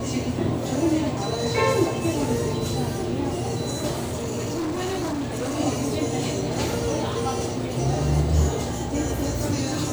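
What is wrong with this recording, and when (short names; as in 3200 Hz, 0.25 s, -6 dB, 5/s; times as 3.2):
4.05–5.6 clipped -24 dBFS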